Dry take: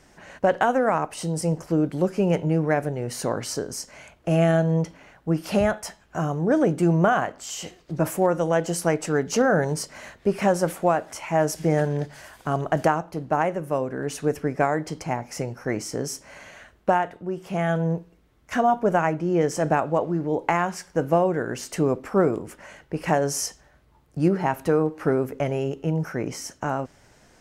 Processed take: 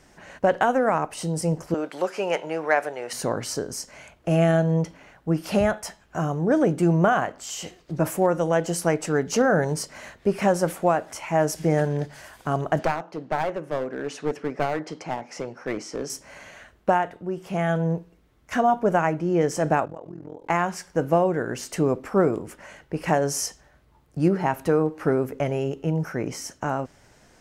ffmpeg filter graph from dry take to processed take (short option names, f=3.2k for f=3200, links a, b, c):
-filter_complex "[0:a]asettb=1/sr,asplit=3[a][b][c];[a]atrim=end=1.744[d];[b]atrim=start=1.74:end=3.13,asetpts=PTS-STARTPTS,afade=t=in:d=0.004:c=qsin,afade=t=out:st=1.386:d=0.004:c=qsin,highpass=740,highshelf=f=9k:g=-11,acontrast=72[e];[c]atrim=start=3.126[f];[d][e]acrossfade=d=0.004:c1=hsin:c2=qsin[g];[g][f]acrossfade=d=0.004:c1=qsin:c2=hsin,asettb=1/sr,asplit=3[h][i][j];[h]atrim=end=12.794[k];[i]atrim=start=12.79:end=16.1,asetpts=PTS-STARTPTS,afade=t=in:d=0.004:c=qsin,afade=t=out:st=3.306:d=0.004:c=qsin,highpass=230,lowpass=5.2k,aeval=exprs='clip(val(0),-1,0.0531)':c=same[l];[j]atrim=start=16.096[m];[k][l]acrossfade=d=0.004:c1=hsin:c2=qsin[n];[n][m]acrossfade=d=0.004:c1=qsin:c2=hsin,asettb=1/sr,asplit=3[o][p][q];[o]atrim=end=19.854[r];[p]atrim=start=19.85:end=20.5,asetpts=PTS-STARTPTS,afade=t=in:d=0.004:c=qsin,afade=t=out:st=0.646:d=0.004:c=qsin,tremolo=f=42:d=0.947,acompressor=threshold=-36dB:ratio=4:attack=3.2:release=140:knee=1:detection=peak[s];[q]atrim=start=20.496[t];[r][s]acrossfade=d=0.004:c1=hsin:c2=qsin[u];[u][t]acrossfade=d=0.004:c1=qsin:c2=hsin"